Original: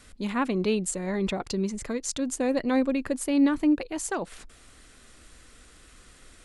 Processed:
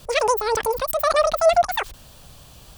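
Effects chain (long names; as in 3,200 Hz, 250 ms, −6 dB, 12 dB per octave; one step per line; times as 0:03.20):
change of speed 2.32×
level +6.5 dB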